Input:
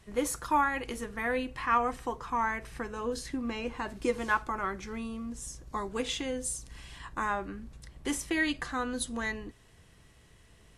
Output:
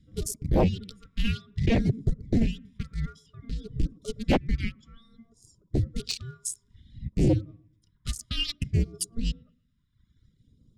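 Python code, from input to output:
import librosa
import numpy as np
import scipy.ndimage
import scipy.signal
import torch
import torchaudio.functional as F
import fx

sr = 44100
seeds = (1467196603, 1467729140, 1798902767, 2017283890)

y = fx.wiener(x, sr, points=25)
y = y * np.sin(2.0 * np.pi * 920.0 * np.arange(len(y)) / sr)
y = scipy.signal.sosfilt(scipy.signal.cheby1(2, 1.0, [140.0, 4800.0], 'bandstop', fs=sr, output='sos'), y)
y = fx.high_shelf(y, sr, hz=4000.0, db=-10.5)
y = fx.dereverb_blind(y, sr, rt60_s=1.2)
y = fx.tilt_shelf(y, sr, db=4.5, hz=1400.0)
y = fx.echo_wet_bandpass(y, sr, ms=114, feedback_pct=40, hz=450.0, wet_db=-16.5)
y = fx.phaser_stages(y, sr, stages=2, low_hz=450.0, high_hz=1700.0, hz=0.58, feedback_pct=30)
y = fx.fold_sine(y, sr, drive_db=16, ceiling_db=-21.0)
y = fx.am_noise(y, sr, seeds[0], hz=5.7, depth_pct=55)
y = y * 10.0 ** (5.5 / 20.0)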